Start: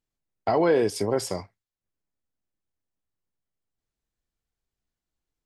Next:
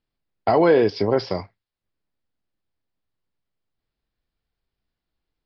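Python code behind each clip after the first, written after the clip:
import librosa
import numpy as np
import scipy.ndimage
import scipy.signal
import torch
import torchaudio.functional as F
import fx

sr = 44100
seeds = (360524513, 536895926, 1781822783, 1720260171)

y = scipy.signal.sosfilt(scipy.signal.butter(12, 5100.0, 'lowpass', fs=sr, output='sos'), x)
y = y * librosa.db_to_amplitude(5.0)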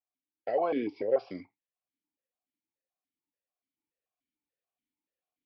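y = fx.rider(x, sr, range_db=10, speed_s=2.0)
y = fx.vowel_held(y, sr, hz=6.9)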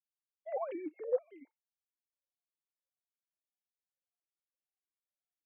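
y = fx.sine_speech(x, sr)
y = fx.vibrato(y, sr, rate_hz=0.67, depth_cents=85.0)
y = y * librosa.db_to_amplitude(-7.5)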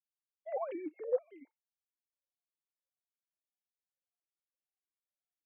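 y = x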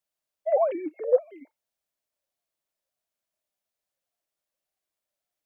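y = fx.peak_eq(x, sr, hz=620.0, db=11.5, octaves=0.37)
y = y * librosa.db_to_amplitude(7.5)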